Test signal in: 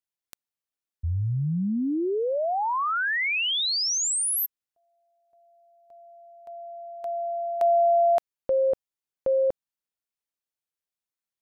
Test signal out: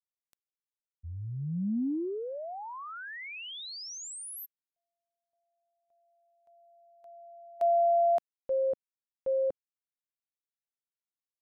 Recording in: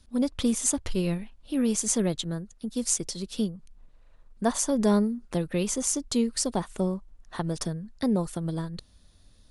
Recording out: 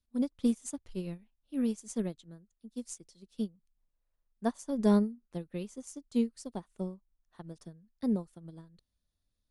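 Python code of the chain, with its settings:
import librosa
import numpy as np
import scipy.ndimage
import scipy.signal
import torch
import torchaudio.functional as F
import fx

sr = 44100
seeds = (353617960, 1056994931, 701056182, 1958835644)

y = fx.dynamic_eq(x, sr, hz=240.0, q=0.77, threshold_db=-37.0, ratio=4.0, max_db=5)
y = fx.upward_expand(y, sr, threshold_db=-29.0, expansion=2.5)
y = y * 10.0 ** (-5.5 / 20.0)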